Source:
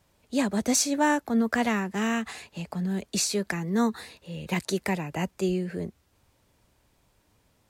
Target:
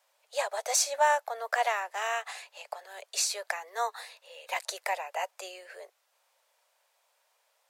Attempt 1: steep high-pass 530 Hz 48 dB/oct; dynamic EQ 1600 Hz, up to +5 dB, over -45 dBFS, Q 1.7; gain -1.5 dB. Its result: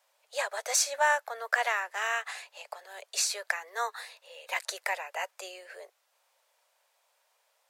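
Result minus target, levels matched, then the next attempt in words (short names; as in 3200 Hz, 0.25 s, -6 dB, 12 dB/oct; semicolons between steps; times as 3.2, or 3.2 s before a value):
2000 Hz band +3.5 dB
steep high-pass 530 Hz 48 dB/oct; dynamic EQ 740 Hz, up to +5 dB, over -45 dBFS, Q 1.7; gain -1.5 dB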